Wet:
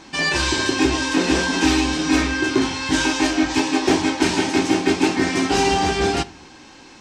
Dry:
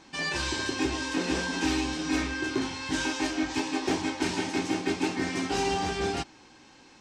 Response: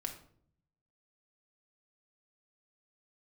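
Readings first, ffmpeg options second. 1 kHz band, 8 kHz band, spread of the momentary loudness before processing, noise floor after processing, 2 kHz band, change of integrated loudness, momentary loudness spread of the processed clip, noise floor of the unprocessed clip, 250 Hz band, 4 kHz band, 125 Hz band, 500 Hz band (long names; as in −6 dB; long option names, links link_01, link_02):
+10.0 dB, +10.0 dB, 3 LU, −44 dBFS, +10.0 dB, +10.0 dB, 3 LU, −54 dBFS, +10.5 dB, +10.0 dB, +9.5 dB, +10.0 dB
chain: -filter_complex "[0:a]asplit=2[link_01][link_02];[1:a]atrim=start_sample=2205,asetrate=61740,aresample=44100[link_03];[link_02][link_03]afir=irnorm=-1:irlink=0,volume=-6dB[link_04];[link_01][link_04]amix=inputs=2:normalize=0,volume=8dB"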